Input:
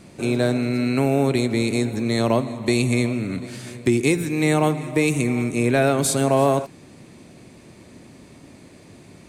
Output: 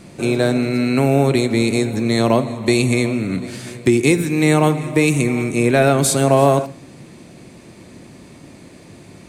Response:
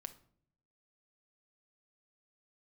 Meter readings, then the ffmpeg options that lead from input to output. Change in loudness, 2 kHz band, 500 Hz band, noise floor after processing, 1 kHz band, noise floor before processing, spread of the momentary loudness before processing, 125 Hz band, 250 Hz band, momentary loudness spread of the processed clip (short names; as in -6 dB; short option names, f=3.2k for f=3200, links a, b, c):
+4.5 dB, +4.5 dB, +4.5 dB, -43 dBFS, +4.5 dB, -47 dBFS, 6 LU, +4.5 dB, +4.0 dB, 7 LU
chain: -filter_complex "[0:a]asplit=2[a][b];[1:a]atrim=start_sample=2205[c];[b][c]afir=irnorm=-1:irlink=0,volume=3.5dB[d];[a][d]amix=inputs=2:normalize=0,volume=-1dB"